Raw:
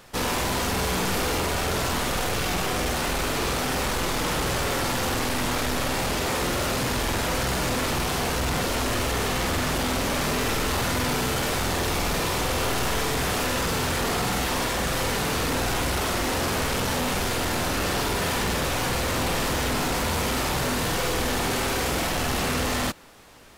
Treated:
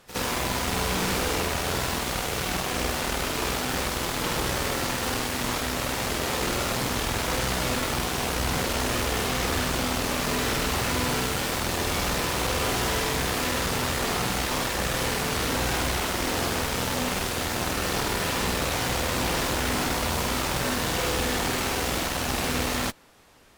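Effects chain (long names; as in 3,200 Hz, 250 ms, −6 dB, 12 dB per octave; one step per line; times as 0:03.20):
harmonic generator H 3 −6 dB, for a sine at −21 dBFS
echo ahead of the sound 64 ms −13.5 dB
slew-rate limiting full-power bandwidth 290 Hz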